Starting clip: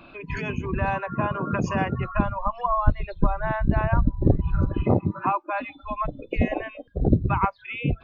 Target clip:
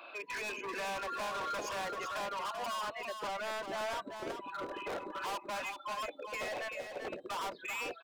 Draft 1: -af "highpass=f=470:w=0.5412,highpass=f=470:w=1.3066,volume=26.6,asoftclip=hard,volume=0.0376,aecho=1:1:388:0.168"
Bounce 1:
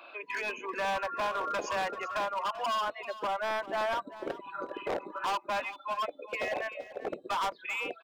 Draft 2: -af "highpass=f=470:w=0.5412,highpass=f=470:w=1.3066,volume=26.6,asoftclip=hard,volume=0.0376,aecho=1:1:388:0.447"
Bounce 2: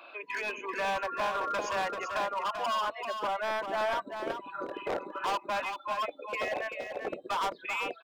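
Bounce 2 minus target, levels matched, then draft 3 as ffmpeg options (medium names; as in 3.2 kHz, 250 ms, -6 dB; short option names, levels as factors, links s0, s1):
overload inside the chain: distortion -4 dB
-af "highpass=f=470:w=0.5412,highpass=f=470:w=1.3066,volume=70.8,asoftclip=hard,volume=0.0141,aecho=1:1:388:0.447"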